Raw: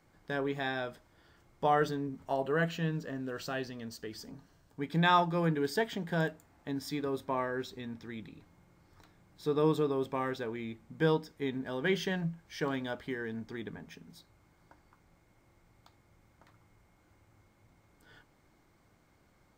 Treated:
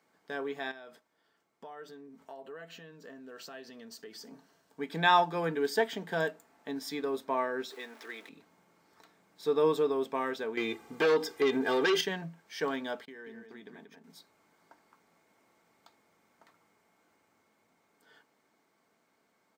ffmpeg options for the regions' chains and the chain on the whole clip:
ffmpeg -i in.wav -filter_complex "[0:a]asettb=1/sr,asplit=3[link_01][link_02][link_03];[link_01]atrim=end=0.714[link_04];[link_02]atrim=start=0.71:end=4.31,asetpts=PTS-STARTPTS,afade=type=in:duration=0.004:curve=qsin,afade=type=out:start_time=3.596:duration=0.004:curve=qsin,agate=range=-7dB:threshold=-60dB:ratio=16:release=100:detection=peak,acompressor=threshold=-44dB:ratio=4:attack=3.2:release=140:knee=1:detection=peak[link_05];[link_03]atrim=start=4.306[link_06];[link_04][link_05]acrossfade=duration=0.004:curve1=hsin:curve2=qsin[link_07];[link_07][link_06]acrossfade=duration=0.004:curve1=qsin:curve2=hsin,asettb=1/sr,asplit=3[link_08][link_09][link_10];[link_08]atrim=end=7.704[link_11];[link_09]atrim=start=7.7:end=8.29,asetpts=PTS-STARTPTS,afade=type=in:duration=0.004:curve=qsin,afade=type=out:start_time=0.586:duration=0.004:curve=qsin,aeval=exprs='val(0)+0.5*0.00282*sgn(val(0))':channel_layout=same,highpass=frequency=340:width=0.5412,highpass=frequency=340:width=1.3066,equalizer=frequency=1600:width=1:gain=4.5[link_12];[link_10]atrim=start=8.286[link_13];[link_11][link_12]acrossfade=duration=0.004:curve1=hsin:curve2=qsin[link_14];[link_14][link_13]acrossfade=duration=0.004:curve1=qsin:curve2=hsin,asettb=1/sr,asplit=3[link_15][link_16][link_17];[link_15]atrim=end=10.574[link_18];[link_16]atrim=start=10.57:end=12.01,asetpts=PTS-STARTPTS,afade=type=in:duration=0.004:curve=qsin,afade=type=out:start_time=1.436:duration=0.004:curve=qsin,aecho=1:1:2.5:0.76,atrim=end_sample=63504,acompressor=threshold=-32dB:ratio=2.5:attack=3.2:release=140:knee=1:detection=peak,aeval=exprs='0.0708*sin(PI/2*2*val(0)/0.0708)':channel_layout=same[link_19];[link_17]atrim=start=12.006[link_20];[link_18][link_19]acrossfade=duration=0.004:curve1=hsin:curve2=qsin[link_21];[link_21][link_20]acrossfade=duration=0.004:curve1=qsin:curve2=hsin,asettb=1/sr,asplit=3[link_22][link_23][link_24];[link_22]atrim=end=13.054[link_25];[link_23]atrim=start=13.05:end=14.04,asetpts=PTS-STARTPTS,afade=type=in:duration=0.004:curve=qsin,afade=type=out:start_time=0.986:duration=0.004:curve=qsin,agate=range=-33dB:threshold=-43dB:ratio=3:release=100:detection=peak,acompressor=threshold=-44dB:ratio=10:attack=3.2:release=140:knee=1:detection=peak,aecho=1:1:184:0.473,atrim=end_sample=43659[link_26];[link_24]atrim=start=14.036[link_27];[link_25][link_26]acrossfade=duration=0.004:curve1=hsin:curve2=qsin[link_28];[link_28][link_27]acrossfade=duration=0.004:curve1=qsin:curve2=hsin,highpass=290,aecho=1:1:4.5:0.36,dynaudnorm=framelen=560:gausssize=11:maxgain=4dB,volume=-2.5dB" out.wav

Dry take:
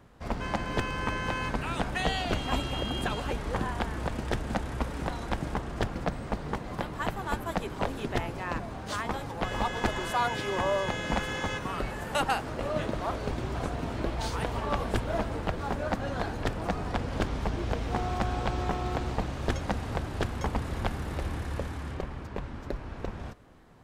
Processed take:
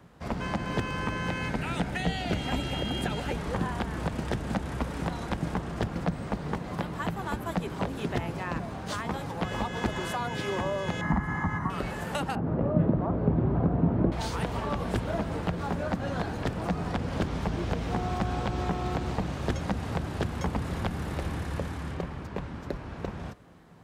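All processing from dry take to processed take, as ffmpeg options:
ffmpeg -i in.wav -filter_complex "[0:a]asettb=1/sr,asplit=3[link_01][link_02][link_03];[link_01]atrim=end=1.284[link_04];[link_02]atrim=start=1.28:end=3.33,asetpts=PTS-STARTPTS,afade=type=in:duration=0.004:curve=qsin,afade=type=out:start_time=2.046:duration=0.004:curve=qsin,equalizer=frequency=2100:width_type=o:width=0.26:gain=4,bandreject=frequency=1100:width=5.8[link_05];[link_03]atrim=start=3.326[link_06];[link_04][link_05]acrossfade=duration=0.004:curve1=hsin:curve2=qsin[link_07];[link_07][link_06]acrossfade=duration=0.004:curve1=qsin:curve2=hsin,asettb=1/sr,asplit=3[link_08][link_09][link_10];[link_08]atrim=end=11.014[link_11];[link_09]atrim=start=11.01:end=11.7,asetpts=PTS-STARTPTS,afade=type=in:duration=0.004:curve=qsin,afade=type=out:start_time=0.686:duration=0.004:curve=qsin,highshelf=frequency=2200:width_type=q:width=3:gain=-11.5,aecho=1:1:1:0.77,atrim=end_sample=30429[link_12];[link_10]atrim=start=11.696[link_13];[link_11][link_12]acrossfade=duration=0.004:curve1=hsin:curve2=qsin[link_14];[link_14][link_13]acrossfade=duration=0.004:curve1=qsin:curve2=hsin,asettb=1/sr,asplit=3[link_15][link_16][link_17];[link_15]atrim=end=12.354[link_18];[link_16]atrim=start=12.35:end=14.12,asetpts=PTS-STARTPTS,afade=type=in:duration=0.004:curve=qsin,afade=type=out:start_time=1.766:duration=0.004:curve=qsin,lowpass=1100,equalizer=frequency=170:width_type=o:width=2.7:gain=8.5[link_19];[link_17]atrim=start=14.116[link_20];[link_18][link_19]acrossfade=duration=0.004:curve1=hsin:curve2=qsin[link_21];[link_21][link_20]acrossfade=duration=0.004:curve1=qsin:curve2=hsin,highpass=59,equalizer=frequency=170:width=5.4:gain=7,acrossover=split=400[link_22][link_23];[link_23]acompressor=threshold=-32dB:ratio=6[link_24];[link_22][link_24]amix=inputs=2:normalize=0,volume=1.5dB" out.wav

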